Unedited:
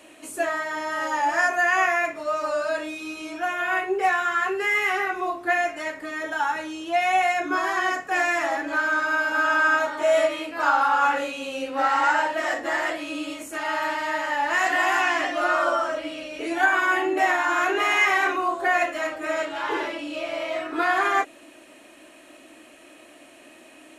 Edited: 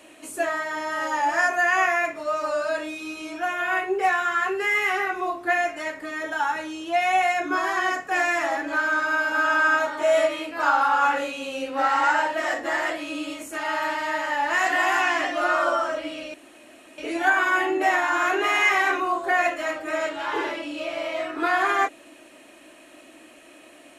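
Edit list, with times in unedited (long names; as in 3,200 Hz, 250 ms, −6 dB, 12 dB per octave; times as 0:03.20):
0:16.34: splice in room tone 0.64 s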